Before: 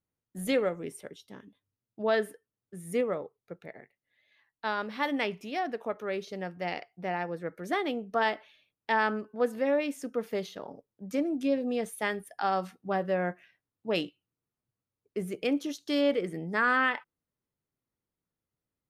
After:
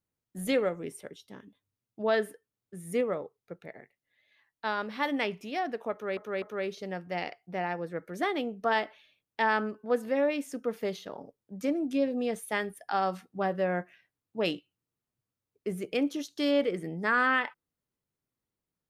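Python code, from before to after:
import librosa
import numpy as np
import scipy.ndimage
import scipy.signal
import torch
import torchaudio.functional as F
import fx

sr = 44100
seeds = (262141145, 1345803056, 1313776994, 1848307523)

y = fx.edit(x, sr, fx.repeat(start_s=5.92, length_s=0.25, count=3), tone=tone)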